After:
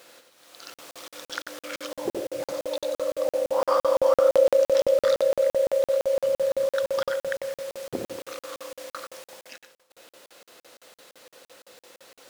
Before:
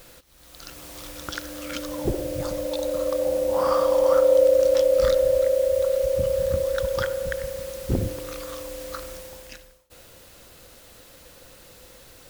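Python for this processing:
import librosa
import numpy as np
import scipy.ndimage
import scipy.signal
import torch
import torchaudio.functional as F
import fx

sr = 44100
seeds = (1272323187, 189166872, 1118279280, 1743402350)

p1 = scipy.signal.sosfilt(scipy.signal.butter(2, 360.0, 'highpass', fs=sr, output='sos'), x)
p2 = fx.high_shelf(p1, sr, hz=10000.0, db=-9.5)
p3 = p2 + fx.echo_single(p2, sr, ms=92, db=-6.0, dry=0)
y = fx.buffer_crackle(p3, sr, first_s=0.74, period_s=0.17, block=2048, kind='zero')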